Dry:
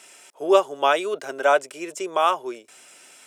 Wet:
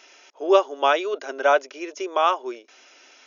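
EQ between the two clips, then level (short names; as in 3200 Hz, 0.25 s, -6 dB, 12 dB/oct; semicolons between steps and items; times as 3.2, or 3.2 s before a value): brick-wall FIR band-pass 230–6800 Hz; 0.0 dB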